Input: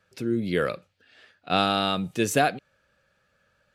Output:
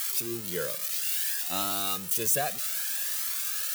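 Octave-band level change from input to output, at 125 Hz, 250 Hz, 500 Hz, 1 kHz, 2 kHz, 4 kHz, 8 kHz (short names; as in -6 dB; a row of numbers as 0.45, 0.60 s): -11.0, -12.5, -9.0, -9.5, -6.0, -2.5, +10.0 dB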